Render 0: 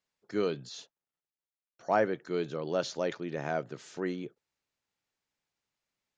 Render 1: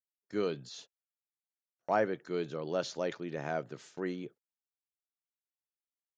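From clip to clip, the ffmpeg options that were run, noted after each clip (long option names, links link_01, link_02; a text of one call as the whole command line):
ffmpeg -i in.wav -af "agate=range=-30dB:threshold=-50dB:ratio=16:detection=peak,volume=-2.5dB" out.wav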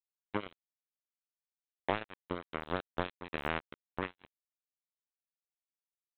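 ffmpeg -i in.wav -af "acompressor=threshold=-35dB:ratio=20,aresample=8000,acrusher=bits=4:mix=0:aa=0.5,aresample=44100,volume=8dB" out.wav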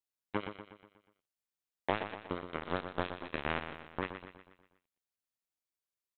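ffmpeg -i in.wav -af "aecho=1:1:121|242|363|484|605|726:0.355|0.181|0.0923|0.0471|0.024|0.0122" out.wav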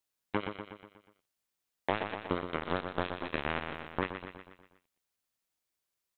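ffmpeg -i in.wav -af "alimiter=limit=-21.5dB:level=0:latency=1:release=327,volume=7dB" out.wav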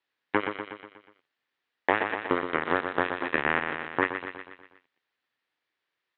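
ffmpeg -i in.wav -filter_complex "[0:a]acrossover=split=3000[link_01][link_02];[link_02]acompressor=threshold=-57dB:ratio=4:attack=1:release=60[link_03];[link_01][link_03]amix=inputs=2:normalize=0,highpass=170,equalizer=frequency=190:width_type=q:width=4:gain=-10,equalizer=frequency=630:width_type=q:width=4:gain=-4,equalizer=frequency=1800:width_type=q:width=4:gain=7,lowpass=frequency=3800:width=0.5412,lowpass=frequency=3800:width=1.3066,volume=8dB" out.wav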